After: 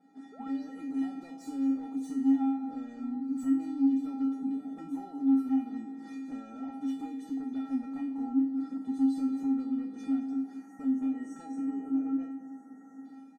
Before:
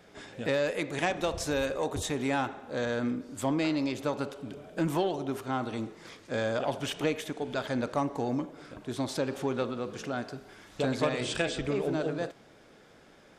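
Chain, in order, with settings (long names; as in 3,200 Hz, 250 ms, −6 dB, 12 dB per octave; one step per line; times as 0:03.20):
automatic gain control gain up to 9.5 dB
sound drawn into the spectrogram rise, 0:00.32–0:00.64, 390–6,500 Hz −30 dBFS
downward compressor 6 to 1, threshold −30 dBFS, peak gain reduction 15.5 dB
linear-phase brick-wall high-pass 150 Hz
parametric band 2,700 Hz −12 dB 0.38 octaves
comb filter 4.2 ms, depth 31%
single-tap delay 216 ms −14.5 dB
time-frequency box erased 0:10.58–0:13.04, 2,300–5,400 Hz
sine wavefolder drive 9 dB, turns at −18 dBFS
tilt shelving filter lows +9.5 dB, about 1,200 Hz
tuned comb filter 270 Hz, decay 0.46 s, harmonics odd, mix 100%
level −3 dB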